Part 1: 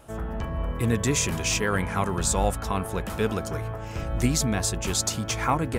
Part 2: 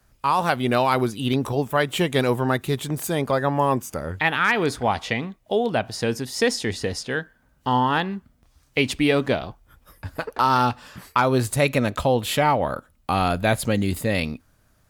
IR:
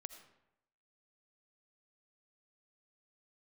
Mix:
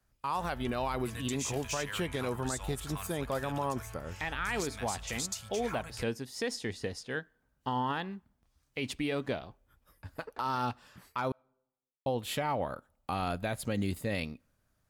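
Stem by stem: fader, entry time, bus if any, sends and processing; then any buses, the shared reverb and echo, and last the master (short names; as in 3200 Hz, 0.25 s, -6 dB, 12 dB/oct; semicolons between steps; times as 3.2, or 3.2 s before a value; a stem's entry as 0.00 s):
-4.0 dB, 0.25 s, send -15 dB, passive tone stack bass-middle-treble 10-0-10; compressor 1.5:1, threshold -38 dBFS, peak gain reduction 6 dB
-7.0 dB, 0.00 s, muted 11.32–12.06, send -24 dB, limiter -12 dBFS, peak gain reduction 6 dB; upward expander 1.5:1, over -32 dBFS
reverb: on, RT60 0.85 s, pre-delay 40 ms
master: limiter -23.5 dBFS, peak gain reduction 7 dB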